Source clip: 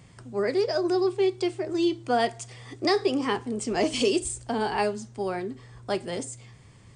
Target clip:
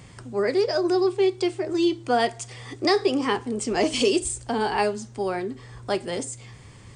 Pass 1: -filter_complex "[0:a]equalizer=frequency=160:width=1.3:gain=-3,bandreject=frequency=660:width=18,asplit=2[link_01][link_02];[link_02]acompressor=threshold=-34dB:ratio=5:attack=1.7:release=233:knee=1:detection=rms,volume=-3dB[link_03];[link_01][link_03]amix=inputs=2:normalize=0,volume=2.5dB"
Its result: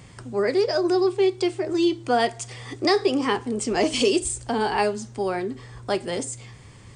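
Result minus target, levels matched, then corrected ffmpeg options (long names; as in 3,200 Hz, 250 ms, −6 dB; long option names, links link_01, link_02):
downward compressor: peak gain reduction −8 dB
-filter_complex "[0:a]equalizer=frequency=160:width=1.3:gain=-3,bandreject=frequency=660:width=18,asplit=2[link_01][link_02];[link_02]acompressor=threshold=-44dB:ratio=5:attack=1.7:release=233:knee=1:detection=rms,volume=-3dB[link_03];[link_01][link_03]amix=inputs=2:normalize=0,volume=2.5dB"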